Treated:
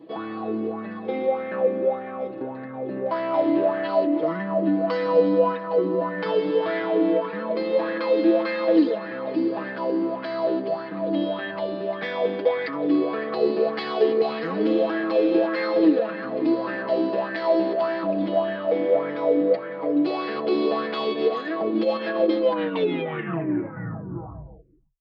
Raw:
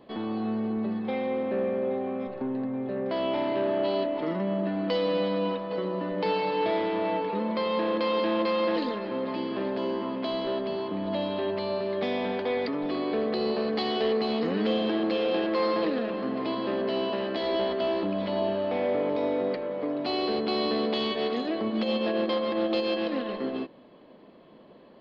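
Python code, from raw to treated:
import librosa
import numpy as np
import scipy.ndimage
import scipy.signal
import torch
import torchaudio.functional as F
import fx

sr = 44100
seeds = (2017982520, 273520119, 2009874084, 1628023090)

y = fx.tape_stop_end(x, sr, length_s=2.62)
y = scipy.signal.sosfilt(scipy.signal.butter(2, 48.0, 'highpass', fs=sr, output='sos'), y)
y = y + 0.8 * np.pad(y, (int(6.2 * sr / 1000.0), 0))[:len(y)]
y = fx.bell_lfo(y, sr, hz=1.7, low_hz=290.0, high_hz=1800.0, db=15)
y = y * librosa.db_to_amplitude(-4.0)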